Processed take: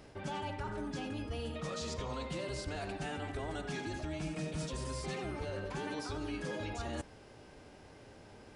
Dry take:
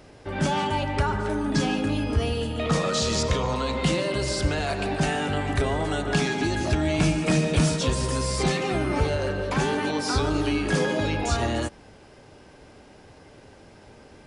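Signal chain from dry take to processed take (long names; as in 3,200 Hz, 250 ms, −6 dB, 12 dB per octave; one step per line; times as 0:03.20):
reversed playback
downward compressor 6 to 1, threshold −32 dBFS, peak gain reduction 14.5 dB
reversed playback
phase-vocoder stretch with locked phases 0.6×
level −4 dB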